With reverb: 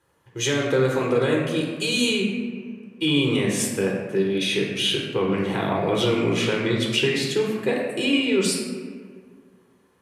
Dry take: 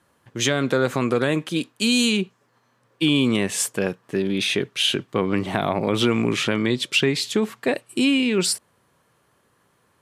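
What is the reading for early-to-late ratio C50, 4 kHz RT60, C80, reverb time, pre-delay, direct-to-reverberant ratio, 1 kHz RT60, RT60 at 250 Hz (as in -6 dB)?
2.0 dB, 1.0 s, 3.5 dB, 1.8 s, 5 ms, -1.5 dB, 1.6 s, 2.1 s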